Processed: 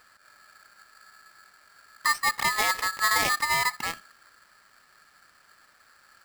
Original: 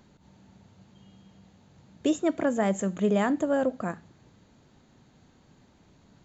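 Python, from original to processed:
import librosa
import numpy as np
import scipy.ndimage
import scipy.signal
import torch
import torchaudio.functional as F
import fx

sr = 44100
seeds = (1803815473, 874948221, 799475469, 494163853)

y = fx.sample_hold(x, sr, seeds[0], rate_hz=2600.0, jitter_pct=0, at=(2.52, 3.41))
y = y * np.sign(np.sin(2.0 * np.pi * 1500.0 * np.arange(len(y)) / sr))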